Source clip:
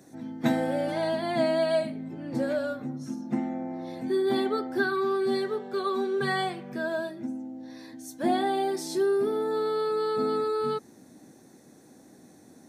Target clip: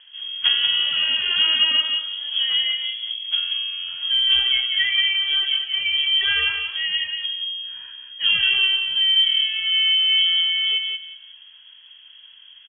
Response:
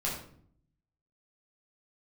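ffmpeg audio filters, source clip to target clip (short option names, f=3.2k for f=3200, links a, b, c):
-filter_complex "[0:a]asplit=2[a][b];[b]adelay=182,lowpass=f=2.4k:p=1,volume=-4dB,asplit=2[c][d];[d]adelay=182,lowpass=f=2.4k:p=1,volume=0.25,asplit=2[e][f];[f]adelay=182,lowpass=f=2.4k:p=1,volume=0.25[g];[a][c][e][g]amix=inputs=4:normalize=0,lowpass=f=3k:t=q:w=0.5098,lowpass=f=3k:t=q:w=0.6013,lowpass=f=3k:t=q:w=0.9,lowpass=f=3k:t=q:w=2.563,afreqshift=-3500,volume=5.5dB"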